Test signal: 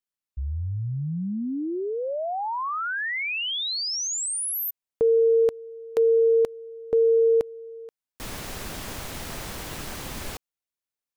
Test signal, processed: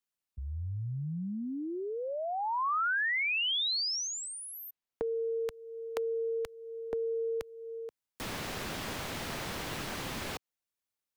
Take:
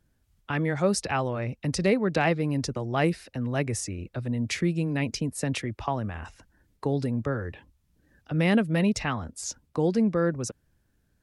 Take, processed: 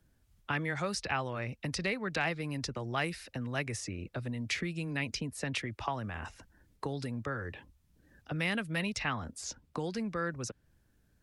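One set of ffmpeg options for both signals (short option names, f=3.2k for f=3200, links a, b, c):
-filter_complex "[0:a]acrossover=split=92|1100|5100[a][b][c][d];[a]acompressor=threshold=-51dB:ratio=4[e];[b]acompressor=threshold=-37dB:ratio=4[f];[c]acompressor=threshold=-30dB:ratio=4[g];[d]acompressor=threshold=-48dB:ratio=4[h];[e][f][g][h]amix=inputs=4:normalize=0"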